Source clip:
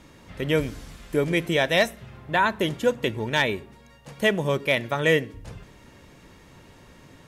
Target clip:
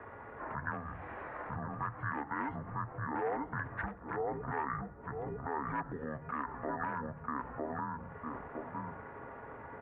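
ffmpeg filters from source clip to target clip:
ffmpeg -i in.wav -filter_complex "[0:a]bandreject=frequency=50:width_type=h:width=6,bandreject=frequency=100:width_type=h:width=6,bandreject=frequency=150:width_type=h:width=6,bandreject=frequency=200:width_type=h:width=6,bandreject=frequency=250:width_type=h:width=6,bandreject=frequency=300:width_type=h:width=6,bandreject=frequency=350:width_type=h:width=6,bandreject=frequency=400:width_type=h:width=6,bandreject=frequency=450:width_type=h:width=6,asplit=2[link_01][link_02];[link_02]adelay=706,lowpass=frequency=1500:poles=1,volume=-4dB,asplit=2[link_03][link_04];[link_04]adelay=706,lowpass=frequency=1500:poles=1,volume=0.18,asplit=2[link_05][link_06];[link_06]adelay=706,lowpass=frequency=1500:poles=1,volume=0.18[link_07];[link_01][link_03][link_05][link_07]amix=inputs=4:normalize=0,asetrate=32667,aresample=44100,asplit=2[link_08][link_09];[link_09]aeval=exprs='(mod(4.47*val(0)+1,2)-1)/4.47':channel_layout=same,volume=-4dB[link_10];[link_08][link_10]amix=inputs=2:normalize=0,acompressor=threshold=-31dB:ratio=4,highpass=frequency=270:width_type=q:width=0.5412,highpass=frequency=270:width_type=q:width=1.307,lowpass=frequency=2700:width_type=q:width=0.5176,lowpass=frequency=2700:width_type=q:width=0.7071,lowpass=frequency=2700:width_type=q:width=1.932,afreqshift=-93,alimiter=level_in=5dB:limit=-24dB:level=0:latency=1:release=104,volume=-5dB,equalizer=frequency=260:width=1.4:gain=-14,asetrate=32097,aresample=44100,atempo=1.37395,volume=5dB" out.wav

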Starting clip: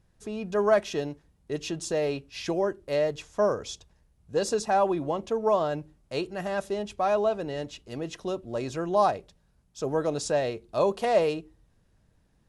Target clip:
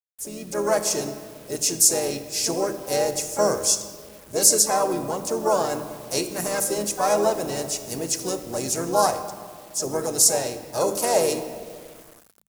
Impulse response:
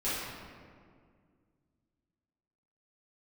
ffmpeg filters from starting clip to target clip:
-filter_complex "[0:a]asplit=3[link_01][link_02][link_03];[link_02]asetrate=35002,aresample=44100,atempo=1.25992,volume=-9dB[link_04];[link_03]asetrate=58866,aresample=44100,atempo=0.749154,volume=-9dB[link_05];[link_01][link_04][link_05]amix=inputs=3:normalize=0,aexciter=amount=7.1:drive=6.6:freq=5000,asplit=2[link_06][link_07];[1:a]atrim=start_sample=2205,adelay=29[link_08];[link_07][link_08]afir=irnorm=-1:irlink=0,volume=-17.5dB[link_09];[link_06][link_09]amix=inputs=2:normalize=0,acrusher=bits=7:mix=0:aa=0.000001,dynaudnorm=framelen=230:gausssize=7:maxgain=6dB,highshelf=frequency=8600:gain=7,bandreject=frequency=50:width_type=h:width=6,bandreject=frequency=100:width_type=h:width=6,bandreject=frequency=150:width_type=h:width=6,bandreject=frequency=200:width_type=h:width=6,volume=-3.5dB"

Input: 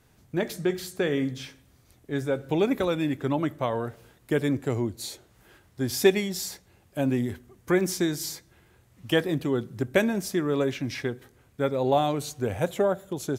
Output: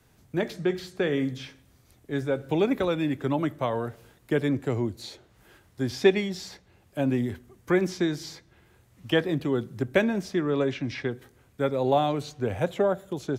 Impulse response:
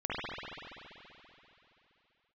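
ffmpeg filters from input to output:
-filter_complex "[0:a]asettb=1/sr,asplit=3[link_01][link_02][link_03];[link_01]atrim=end=10.504[link_04];[link_02]atrim=start=10.5:end=11.11,asetpts=PTS-STARTPTS,afade=type=in:duration=0.004:curve=qsin,afade=type=out:start_time=0.606:duration=0.004:curve=qsin,lowpass=6600[link_05];[link_03]atrim=start=11.106[link_06];[link_04][link_05]acrossfade=duration=0.004:curve1=hsin:curve2=qsin[link_07];[link_07][link_06]acrossfade=duration=0.004:curve1=qsin:curve2=hsin,acrossover=split=130|620|5200[link_08][link_09][link_10][link_11];[link_11]acompressor=threshold=-59dB:ratio=4[link_12];[link_08][link_09][link_10][link_12]amix=inputs=4:normalize=0"

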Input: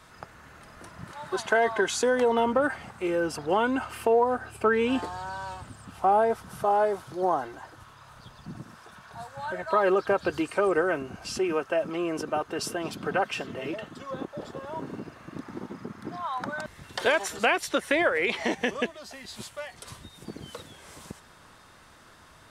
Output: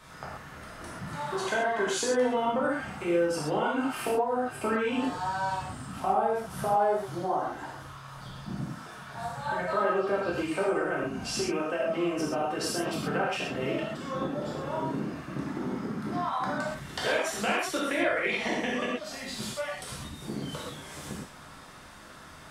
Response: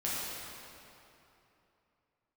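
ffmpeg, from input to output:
-filter_complex "[0:a]acompressor=threshold=-33dB:ratio=2.5[link_01];[1:a]atrim=start_sample=2205,atrim=end_sample=6174[link_02];[link_01][link_02]afir=irnorm=-1:irlink=0,volume=1.5dB"

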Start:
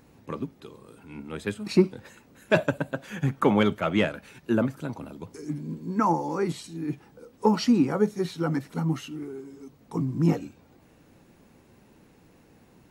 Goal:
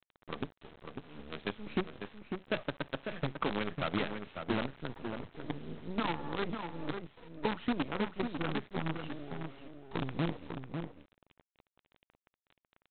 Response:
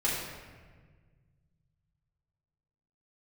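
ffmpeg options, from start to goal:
-filter_complex "[0:a]acompressor=threshold=-25dB:ratio=6,aresample=8000,acrusher=bits=5:dc=4:mix=0:aa=0.000001,aresample=44100,asplit=2[link_01][link_02];[link_02]adelay=548.1,volume=-6dB,highshelf=frequency=4000:gain=-12.3[link_03];[link_01][link_03]amix=inputs=2:normalize=0,volume=-5.5dB"

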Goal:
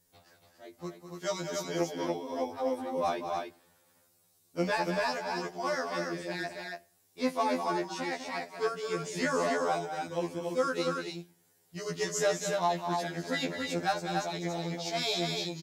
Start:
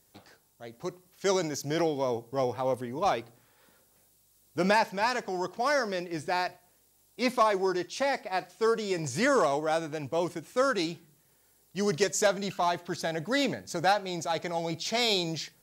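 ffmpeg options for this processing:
ffmpeg -i in.wav -af "acontrast=37,aecho=1:1:201.2|282.8:0.355|0.631,afftfilt=real='re*2*eq(mod(b,4),0)':imag='im*2*eq(mod(b,4),0)':win_size=2048:overlap=0.75,volume=-8dB" out.wav

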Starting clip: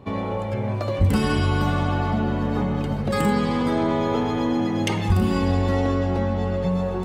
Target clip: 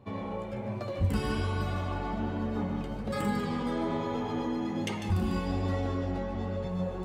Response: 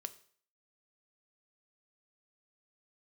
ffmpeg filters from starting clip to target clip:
-filter_complex "[0:a]asplit=2[link_01][link_02];[link_02]bass=frequency=250:gain=8,treble=frequency=4000:gain=5[link_03];[1:a]atrim=start_sample=2205,adelay=148[link_04];[link_03][link_04]afir=irnorm=-1:irlink=0,volume=-9.5dB[link_05];[link_01][link_05]amix=inputs=2:normalize=0,flanger=delay=8.5:depth=7.8:regen=-44:speed=1.2:shape=sinusoidal,volume=-6dB"

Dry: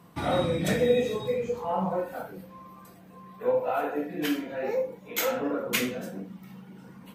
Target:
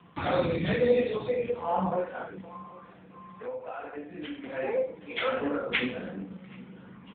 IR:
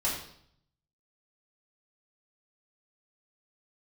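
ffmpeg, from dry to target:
-filter_complex "[0:a]equalizer=frequency=88:width=6.4:gain=9.5,acrossover=split=210|1100[link_01][link_02][link_03];[link_03]acontrast=50[link_04];[link_01][link_02][link_04]amix=inputs=3:normalize=0,asplit=2[link_05][link_06];[link_06]adelay=773,lowpass=frequency=1400:poles=1,volume=-21dB,asplit=2[link_07][link_08];[link_08]adelay=773,lowpass=frequency=1400:poles=1,volume=0.26[link_09];[link_05][link_07][link_09]amix=inputs=3:normalize=0,asettb=1/sr,asplit=3[link_10][link_11][link_12];[link_10]atrim=end=2.614[link_13];[link_11]atrim=start=2.61:end=4.44,asetpts=PTS-STARTPTS,afade=type=in:duration=0.004:curve=qsin,afade=type=out:start_time=1.826:duration=0.004:curve=qsin,acompressor=threshold=-39dB:ratio=2.5[link_14];[link_12]atrim=start=4.436[link_15];[link_13][link_14]acrossfade=duration=0.004:curve1=hsin:curve2=qsin[link_16];[link_16][link_15]acrossfade=duration=0.004:curve1=qsin:curve2=hsin" -ar 8000 -c:a libopencore_amrnb -b:a 6700

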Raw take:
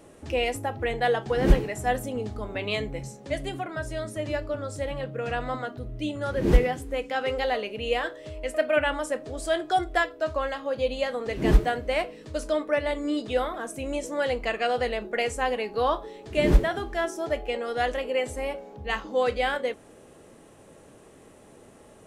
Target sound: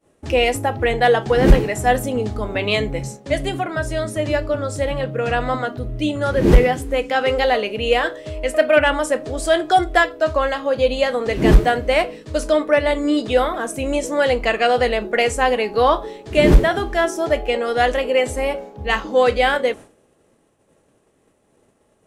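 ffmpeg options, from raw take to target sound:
ffmpeg -i in.wav -af "aeval=exprs='0.596*sin(PI/2*1.41*val(0)/0.596)':channel_layout=same,agate=range=-33dB:threshold=-32dB:ratio=3:detection=peak,volume=2.5dB" out.wav

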